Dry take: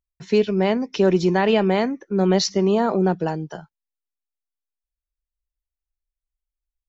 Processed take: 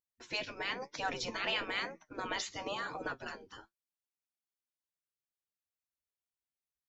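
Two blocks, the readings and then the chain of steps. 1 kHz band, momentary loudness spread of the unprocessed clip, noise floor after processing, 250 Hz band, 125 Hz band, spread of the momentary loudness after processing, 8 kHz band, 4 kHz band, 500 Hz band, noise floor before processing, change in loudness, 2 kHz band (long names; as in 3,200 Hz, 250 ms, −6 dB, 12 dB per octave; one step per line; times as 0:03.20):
−14.0 dB, 7 LU, below −85 dBFS, −27.5 dB, −29.0 dB, 11 LU, can't be measured, −8.5 dB, −24.0 dB, below −85 dBFS, −17.5 dB, −6.0 dB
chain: gate on every frequency bin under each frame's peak −15 dB weak
flanger 1 Hz, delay 6 ms, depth 4.5 ms, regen +61%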